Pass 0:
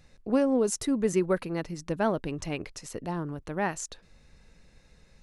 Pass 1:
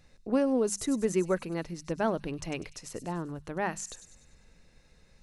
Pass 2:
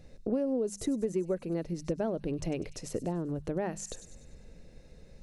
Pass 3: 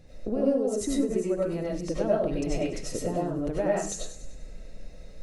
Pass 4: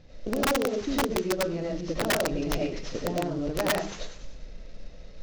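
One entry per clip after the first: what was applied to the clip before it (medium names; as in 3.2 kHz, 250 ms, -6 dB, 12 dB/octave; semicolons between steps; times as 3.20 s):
hum notches 50/100/150/200 Hz; feedback echo behind a high-pass 98 ms, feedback 51%, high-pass 4.8 kHz, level -8 dB; trim -2 dB
resonant low shelf 760 Hz +8 dB, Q 1.5; compression 4:1, threshold -30 dBFS, peak gain reduction 14.5 dB
reverberation RT60 0.35 s, pre-delay 55 ms, DRR -6 dB
CVSD coder 32 kbps; integer overflow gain 18.5 dB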